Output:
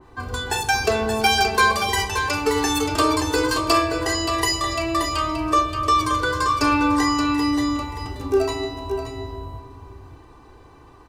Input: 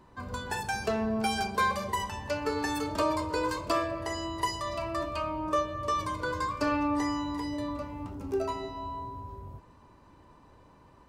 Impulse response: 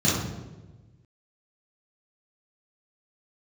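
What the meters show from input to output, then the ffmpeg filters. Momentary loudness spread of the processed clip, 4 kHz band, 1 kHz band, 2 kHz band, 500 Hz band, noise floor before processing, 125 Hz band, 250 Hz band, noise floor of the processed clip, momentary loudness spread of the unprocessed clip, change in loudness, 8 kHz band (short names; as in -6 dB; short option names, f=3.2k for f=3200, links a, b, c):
11 LU, +14.5 dB, +10.0 dB, +12.5 dB, +8.5 dB, -57 dBFS, +9.5 dB, +9.5 dB, -48 dBFS, 10 LU, +10.5 dB, +15.0 dB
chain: -af "aecho=1:1:2.6:0.62,aecho=1:1:576:0.422,adynamicequalizer=threshold=0.00708:dfrequency=2400:dqfactor=0.7:tfrequency=2400:tqfactor=0.7:attack=5:release=100:ratio=0.375:range=3:mode=boostabove:tftype=highshelf,volume=7.5dB"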